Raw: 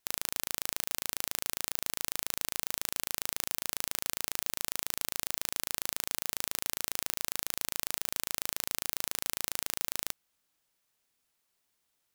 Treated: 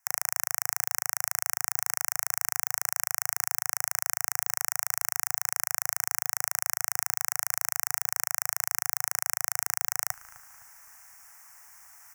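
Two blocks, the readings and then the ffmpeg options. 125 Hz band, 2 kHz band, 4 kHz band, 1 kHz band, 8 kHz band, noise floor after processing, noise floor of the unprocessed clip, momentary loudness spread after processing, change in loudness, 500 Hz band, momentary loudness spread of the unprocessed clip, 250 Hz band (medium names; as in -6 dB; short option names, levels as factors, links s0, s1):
no reading, +6.5 dB, -3.0 dB, +7.5 dB, +6.0 dB, -73 dBFS, -79 dBFS, 0 LU, +5.0 dB, -6.0 dB, 0 LU, under -10 dB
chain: -filter_complex "[0:a]firequalizer=gain_entry='entry(110,0);entry(160,-12);entry(280,-14);entry(460,-16);entry(750,8);entry(1900,10);entry(3700,-23);entry(5600,9);entry(10000,5);entry(15000,7)':delay=0.05:min_phase=1,areverse,acompressor=mode=upward:threshold=0.0224:ratio=2.5,areverse,asplit=2[s0][s1];[s1]adelay=257,lowpass=f=2000:p=1,volume=0.178,asplit=2[s2][s3];[s3]adelay=257,lowpass=f=2000:p=1,volume=0.49,asplit=2[s4][s5];[s5]adelay=257,lowpass=f=2000:p=1,volume=0.49,asplit=2[s6][s7];[s7]adelay=257,lowpass=f=2000:p=1,volume=0.49,asplit=2[s8][s9];[s9]adelay=257,lowpass=f=2000:p=1,volume=0.49[s10];[s0][s2][s4][s6][s8][s10]amix=inputs=6:normalize=0,volume=0.891"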